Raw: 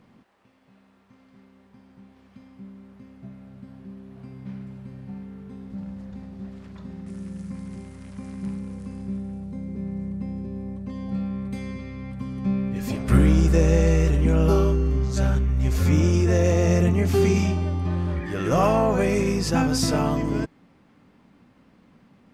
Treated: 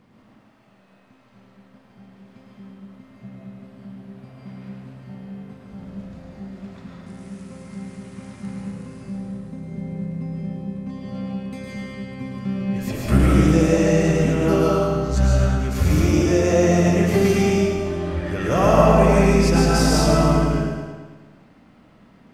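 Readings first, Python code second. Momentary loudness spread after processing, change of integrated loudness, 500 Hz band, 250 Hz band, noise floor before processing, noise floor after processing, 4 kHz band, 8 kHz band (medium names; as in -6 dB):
21 LU, +4.0 dB, +5.5 dB, +4.0 dB, -58 dBFS, -54 dBFS, +5.0 dB, +4.5 dB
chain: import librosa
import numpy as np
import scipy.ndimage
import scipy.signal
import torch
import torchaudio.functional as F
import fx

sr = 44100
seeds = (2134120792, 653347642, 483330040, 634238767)

y = fx.echo_feedback(x, sr, ms=109, feedback_pct=59, wet_db=-6.0)
y = fx.rev_freeverb(y, sr, rt60_s=0.81, hf_ratio=0.55, predelay_ms=105, drr_db=-2.5)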